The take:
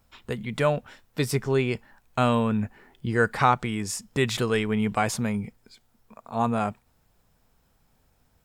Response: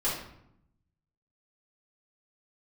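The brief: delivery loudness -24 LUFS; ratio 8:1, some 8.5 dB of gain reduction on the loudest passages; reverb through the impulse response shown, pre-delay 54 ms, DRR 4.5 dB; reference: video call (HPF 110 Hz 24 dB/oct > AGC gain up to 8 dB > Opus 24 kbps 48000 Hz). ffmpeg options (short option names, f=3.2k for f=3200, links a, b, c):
-filter_complex "[0:a]acompressor=threshold=-23dB:ratio=8,asplit=2[a][b];[1:a]atrim=start_sample=2205,adelay=54[c];[b][c]afir=irnorm=-1:irlink=0,volume=-13dB[d];[a][d]amix=inputs=2:normalize=0,highpass=f=110:w=0.5412,highpass=f=110:w=1.3066,dynaudnorm=m=8dB,volume=5.5dB" -ar 48000 -c:a libopus -b:a 24k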